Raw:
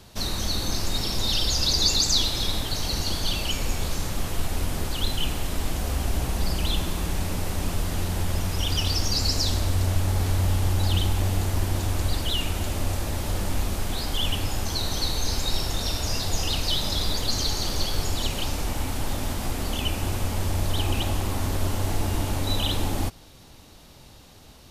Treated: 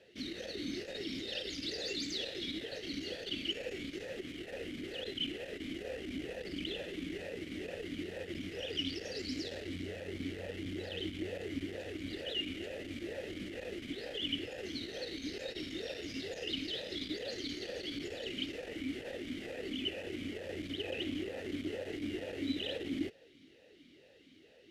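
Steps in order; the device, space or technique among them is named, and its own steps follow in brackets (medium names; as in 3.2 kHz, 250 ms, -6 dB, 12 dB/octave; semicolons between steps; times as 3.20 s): talk box (valve stage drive 17 dB, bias 0.4; talking filter e-i 2.2 Hz); trim +5 dB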